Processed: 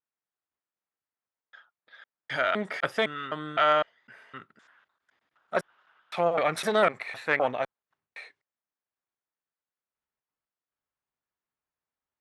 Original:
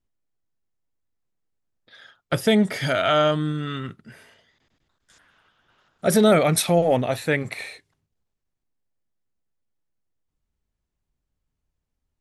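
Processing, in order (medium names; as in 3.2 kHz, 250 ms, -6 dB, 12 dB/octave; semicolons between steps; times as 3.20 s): slices played last to first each 255 ms, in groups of 3; Chebyshev shaper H 2 -6 dB, 4 -16 dB, 6 -25 dB, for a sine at -6.5 dBFS; band-pass filter 1.3 kHz, Q 1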